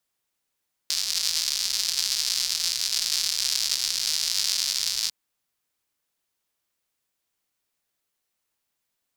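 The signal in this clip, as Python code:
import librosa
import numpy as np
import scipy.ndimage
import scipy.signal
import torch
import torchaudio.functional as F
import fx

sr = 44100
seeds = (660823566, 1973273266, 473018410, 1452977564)

y = fx.rain(sr, seeds[0], length_s=4.2, drops_per_s=200.0, hz=4800.0, bed_db=-29.0)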